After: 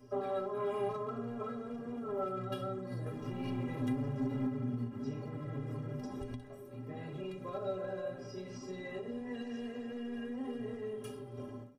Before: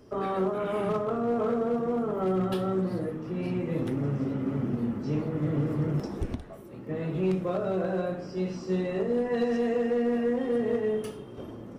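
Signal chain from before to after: 3.06–4.5 sample leveller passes 2; compressor, threshold -29 dBFS, peak gain reduction 7 dB; metallic resonator 120 Hz, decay 0.29 s, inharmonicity 0.03; feedback echo 69 ms, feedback 20%, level -18.5 dB; ending taper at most 140 dB/s; gain +5.5 dB

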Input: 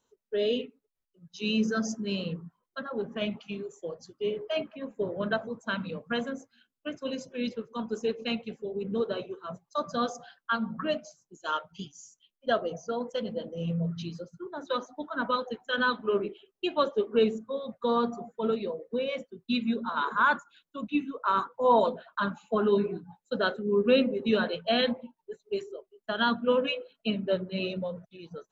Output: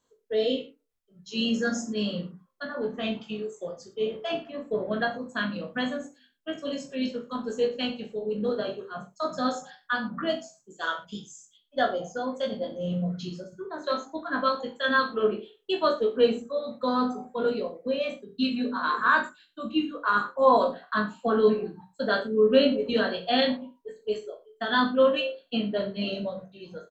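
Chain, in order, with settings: reverse bouncing-ball echo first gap 20 ms, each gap 1.1×, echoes 5; varispeed +6%

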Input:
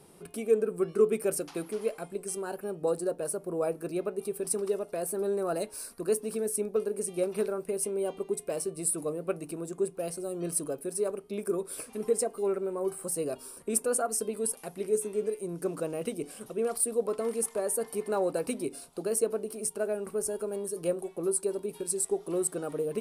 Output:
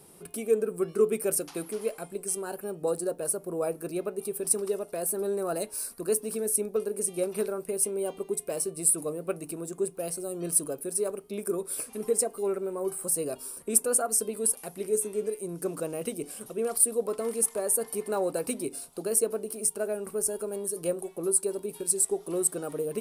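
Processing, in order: high shelf 8100 Hz +10.5 dB

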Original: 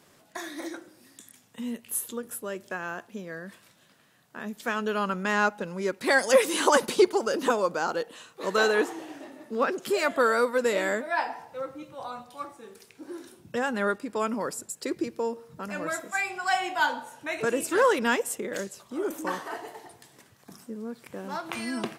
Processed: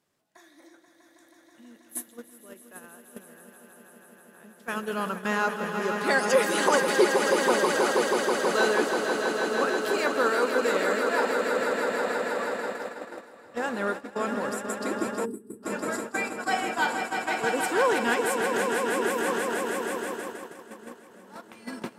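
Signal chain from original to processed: swelling echo 0.161 s, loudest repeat 5, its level -7.5 dB; spectral gain 15.25–15.63, 460–7700 Hz -23 dB; gate -28 dBFS, range -15 dB; gain -2.5 dB

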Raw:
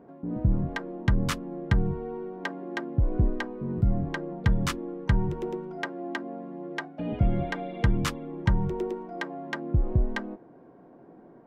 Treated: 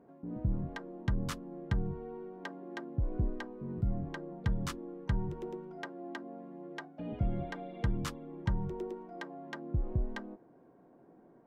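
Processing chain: dynamic EQ 2300 Hz, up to -4 dB, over -48 dBFS, Q 1.4; gain -8.5 dB

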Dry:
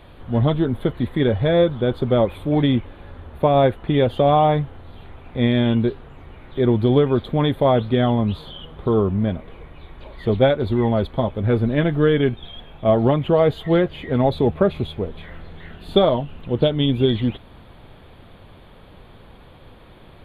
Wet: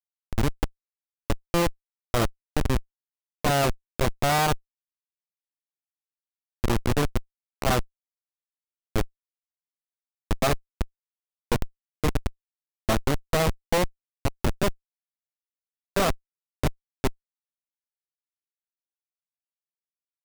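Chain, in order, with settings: formant shift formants +2 st; added harmonics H 7 -18 dB, 8 -8 dB, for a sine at -3 dBFS; Schmitt trigger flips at -12 dBFS; gain -3.5 dB

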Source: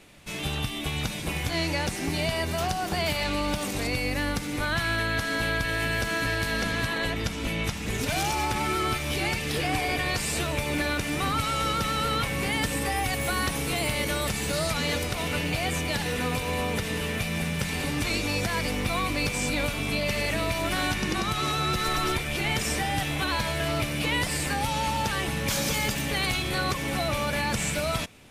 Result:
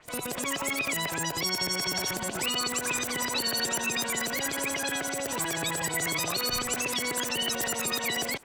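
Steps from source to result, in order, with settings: LFO low-pass saw up 3.4 Hz 530–6200 Hz; wide varispeed 3.35×; gain -4 dB

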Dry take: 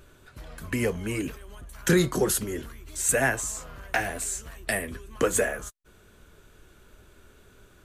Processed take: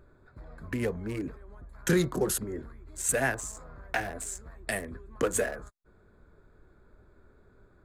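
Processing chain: Wiener smoothing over 15 samples; gain -3.5 dB

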